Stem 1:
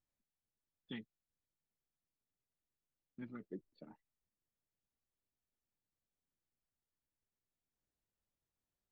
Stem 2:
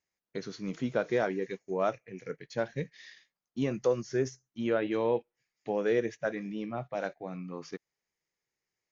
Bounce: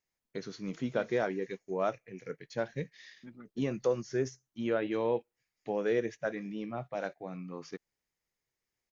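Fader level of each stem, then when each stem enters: −1.5, −2.0 decibels; 0.05, 0.00 seconds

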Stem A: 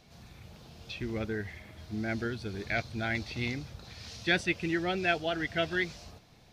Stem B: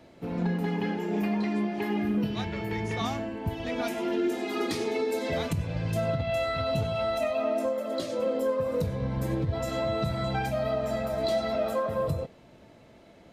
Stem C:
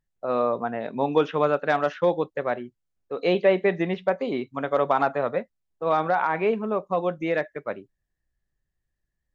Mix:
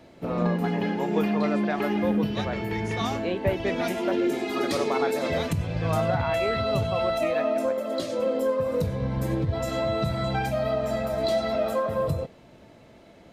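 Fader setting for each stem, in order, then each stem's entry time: −14.5, +2.5, −7.5 decibels; 0.75, 0.00, 0.00 seconds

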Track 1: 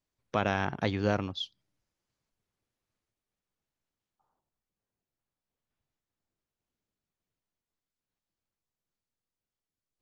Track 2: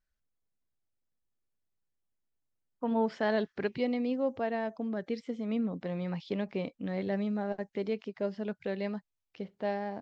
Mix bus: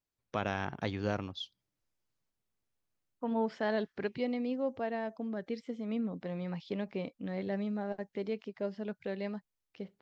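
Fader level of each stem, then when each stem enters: −5.5, −3.0 decibels; 0.00, 0.40 seconds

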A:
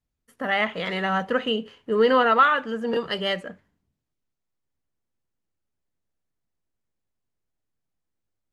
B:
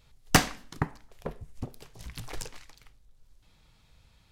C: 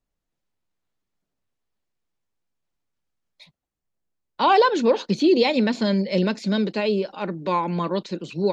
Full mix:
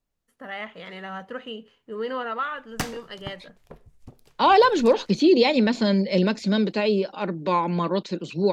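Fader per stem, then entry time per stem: −11.0, −8.5, +0.5 decibels; 0.00, 2.45, 0.00 seconds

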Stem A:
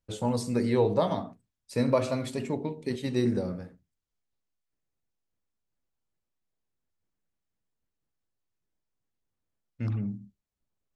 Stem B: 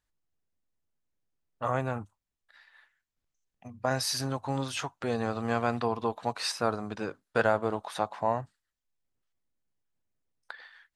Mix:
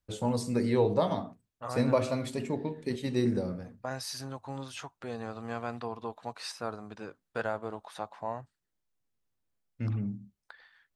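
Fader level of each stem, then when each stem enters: −1.5, −8.0 decibels; 0.00, 0.00 seconds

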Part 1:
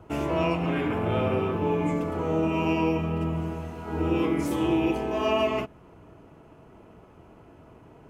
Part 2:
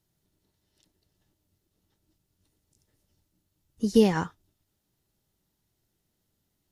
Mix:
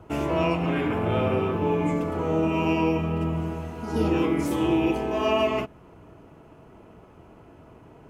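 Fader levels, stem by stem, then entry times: +1.5, −9.5 decibels; 0.00, 0.00 seconds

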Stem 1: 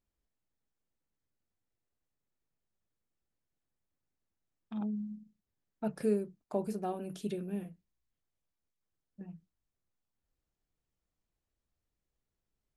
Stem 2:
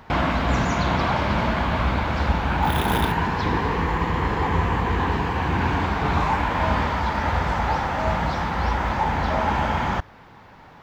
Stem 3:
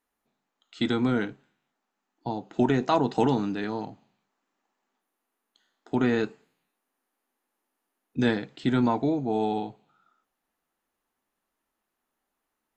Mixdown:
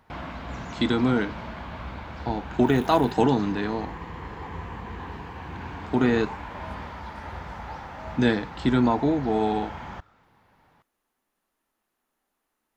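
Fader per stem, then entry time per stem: −16.0, −14.5, +2.5 decibels; 0.00, 0.00, 0.00 seconds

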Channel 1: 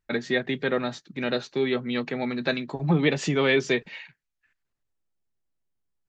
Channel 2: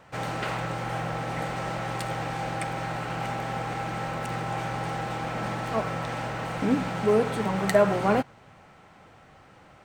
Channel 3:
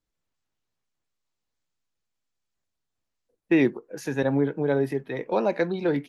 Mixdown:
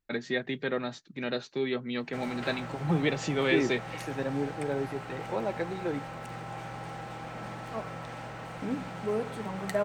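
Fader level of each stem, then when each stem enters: −5.5, −9.0, −8.5 decibels; 0.00, 2.00, 0.00 seconds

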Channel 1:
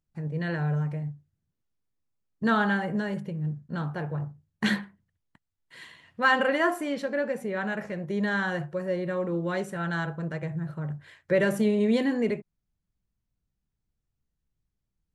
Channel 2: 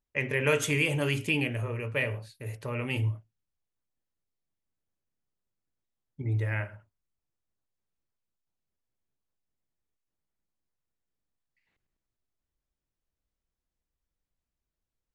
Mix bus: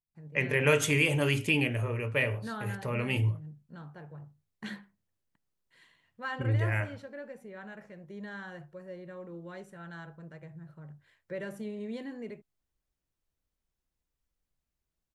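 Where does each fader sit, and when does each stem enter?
−15.0, +1.0 decibels; 0.00, 0.20 seconds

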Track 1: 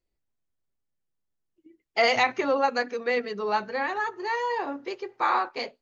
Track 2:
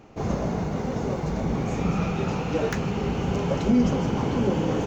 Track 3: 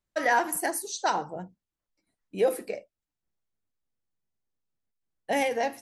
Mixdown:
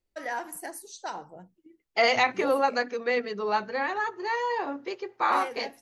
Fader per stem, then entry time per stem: −0.5 dB, muted, −9.5 dB; 0.00 s, muted, 0.00 s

